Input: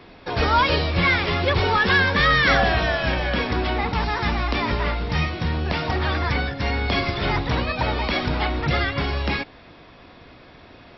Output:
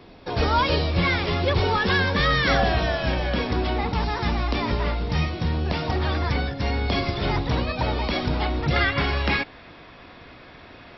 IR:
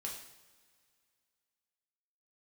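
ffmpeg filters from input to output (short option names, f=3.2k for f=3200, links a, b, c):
-af "asetnsamples=n=441:p=0,asendcmd='8.76 equalizer g 3.5',equalizer=f=1.8k:w=0.73:g=-5.5"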